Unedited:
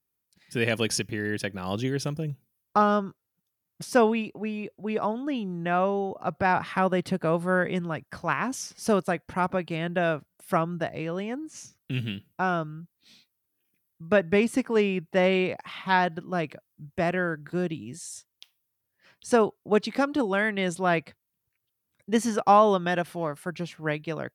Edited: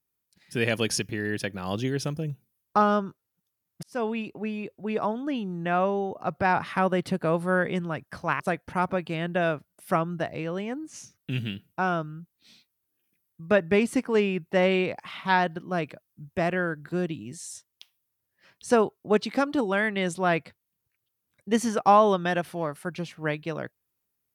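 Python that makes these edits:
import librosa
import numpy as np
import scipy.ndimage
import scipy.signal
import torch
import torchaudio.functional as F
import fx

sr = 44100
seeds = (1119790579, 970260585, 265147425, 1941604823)

y = fx.edit(x, sr, fx.fade_in_span(start_s=3.83, length_s=0.5),
    fx.cut(start_s=8.4, length_s=0.61), tone=tone)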